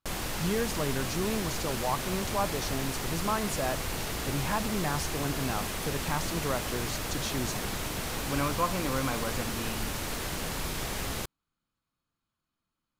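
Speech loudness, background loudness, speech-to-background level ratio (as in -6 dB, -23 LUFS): -34.0 LUFS, -33.5 LUFS, -0.5 dB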